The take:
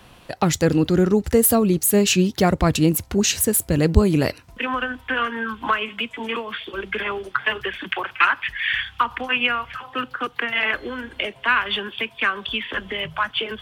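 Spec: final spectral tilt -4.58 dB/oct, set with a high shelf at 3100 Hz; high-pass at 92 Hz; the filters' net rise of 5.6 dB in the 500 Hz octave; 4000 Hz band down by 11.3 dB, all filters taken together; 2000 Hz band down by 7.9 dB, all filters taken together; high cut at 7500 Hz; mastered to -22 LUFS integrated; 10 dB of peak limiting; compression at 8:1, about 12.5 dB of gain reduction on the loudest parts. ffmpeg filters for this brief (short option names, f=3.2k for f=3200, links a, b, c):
-af "highpass=92,lowpass=7.5k,equalizer=f=500:t=o:g=7.5,equalizer=f=2k:t=o:g=-7,highshelf=f=3.1k:g=-8.5,equalizer=f=4k:t=o:g=-6.5,acompressor=threshold=-19dB:ratio=8,volume=6.5dB,alimiter=limit=-11dB:level=0:latency=1"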